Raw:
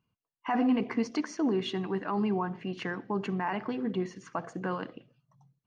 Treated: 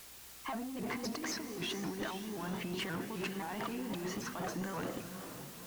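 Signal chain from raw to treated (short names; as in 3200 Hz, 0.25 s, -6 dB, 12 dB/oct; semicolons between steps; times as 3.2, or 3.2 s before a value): opening faded in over 1.32 s; negative-ratio compressor -40 dBFS, ratio -1; added noise white -55 dBFS; soft clip -36 dBFS, distortion -10 dB; hum 60 Hz, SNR 28 dB; on a send: diffused feedback echo 0.454 s, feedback 48%, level -9 dB; on the sum: shaped vibrato saw up 3.8 Hz, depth 160 cents; gain +2.5 dB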